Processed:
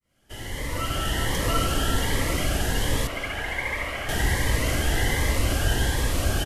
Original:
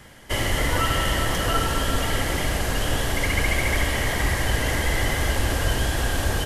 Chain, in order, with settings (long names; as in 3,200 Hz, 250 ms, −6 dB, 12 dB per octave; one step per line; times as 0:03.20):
fade in at the beginning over 1.48 s
0:03.07–0:04.09: three-way crossover with the lows and the highs turned down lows −12 dB, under 540 Hz, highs −13 dB, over 2,800 Hz
far-end echo of a speakerphone 210 ms, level −8 dB
phaser whose notches keep moving one way rising 1.3 Hz